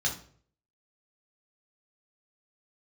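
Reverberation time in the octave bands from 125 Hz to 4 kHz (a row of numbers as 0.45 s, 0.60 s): 0.70 s, 0.55 s, 0.60 s, 0.45 s, 0.40 s, 0.40 s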